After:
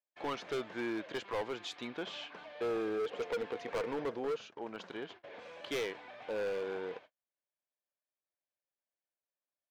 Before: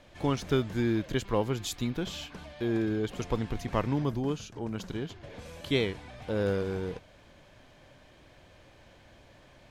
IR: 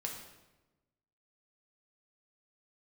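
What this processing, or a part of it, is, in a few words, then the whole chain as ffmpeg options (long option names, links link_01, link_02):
walkie-talkie: -filter_complex "[0:a]asettb=1/sr,asplit=3[link_01][link_02][link_03];[link_01]atrim=end=2.554[link_04];[link_02]atrim=start=2.55:end=4.36,asetpts=PTS-STARTPTS,afade=type=in:duration=0.004:curve=qsin,afade=type=out:start_time=1.806:duration=0.004:curve=qsin,equalizer=frequency=470:width_type=o:width=0.23:gain=15[link_05];[link_03]atrim=start=4.356[link_06];[link_04][link_05]acrossfade=duration=0.004:curve1=hsin:curve2=qsin[link_07];[link_07][link_06]acrossfade=duration=0.004:curve1=qsin:curve2=hsin,highpass=480,lowpass=3000,asoftclip=type=hard:threshold=-31.5dB,agate=range=-43dB:threshold=-52dB:ratio=16:detection=peak"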